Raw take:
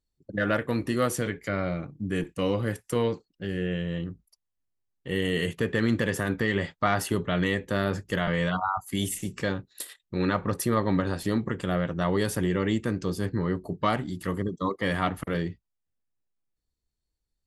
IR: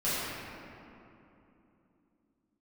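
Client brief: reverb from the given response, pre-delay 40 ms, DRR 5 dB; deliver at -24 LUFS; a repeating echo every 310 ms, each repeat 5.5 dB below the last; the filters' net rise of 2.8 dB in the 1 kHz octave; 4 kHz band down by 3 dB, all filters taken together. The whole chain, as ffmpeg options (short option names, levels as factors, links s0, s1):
-filter_complex "[0:a]equalizer=f=1000:t=o:g=4,equalizer=f=4000:t=o:g=-4.5,aecho=1:1:310|620|930|1240|1550|1860|2170:0.531|0.281|0.149|0.079|0.0419|0.0222|0.0118,asplit=2[s0][s1];[1:a]atrim=start_sample=2205,adelay=40[s2];[s1][s2]afir=irnorm=-1:irlink=0,volume=0.168[s3];[s0][s3]amix=inputs=2:normalize=0,volume=1.12"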